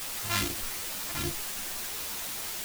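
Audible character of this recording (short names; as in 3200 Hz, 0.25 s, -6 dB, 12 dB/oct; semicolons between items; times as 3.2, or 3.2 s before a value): a buzz of ramps at a fixed pitch in blocks of 128 samples; phasing stages 2, 2.5 Hz, lowest notch 320–1300 Hz; a quantiser's noise floor 6-bit, dither triangular; a shimmering, thickened sound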